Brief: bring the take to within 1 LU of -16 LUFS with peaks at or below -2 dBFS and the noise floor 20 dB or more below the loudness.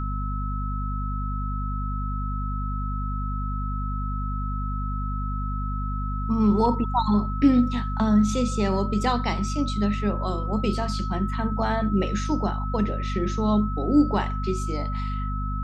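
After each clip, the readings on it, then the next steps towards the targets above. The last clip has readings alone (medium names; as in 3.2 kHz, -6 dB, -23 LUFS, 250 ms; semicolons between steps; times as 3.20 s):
hum 50 Hz; highest harmonic 250 Hz; hum level -26 dBFS; steady tone 1.3 kHz; tone level -33 dBFS; loudness -26.0 LUFS; peak level -7.0 dBFS; loudness target -16.0 LUFS
-> de-hum 50 Hz, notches 5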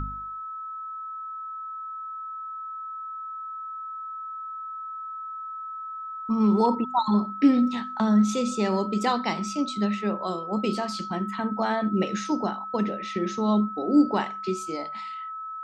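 hum not found; steady tone 1.3 kHz; tone level -33 dBFS
-> band-stop 1.3 kHz, Q 30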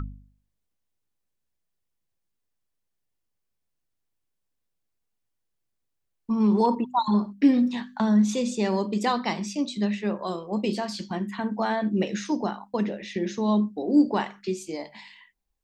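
steady tone not found; loudness -25.5 LUFS; peak level -9.0 dBFS; loudness target -16.0 LUFS
-> trim +9.5 dB; peak limiter -2 dBFS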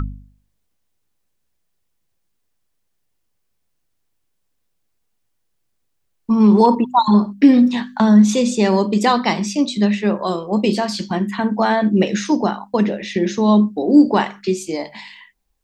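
loudness -16.5 LUFS; peak level -2.0 dBFS; noise floor -69 dBFS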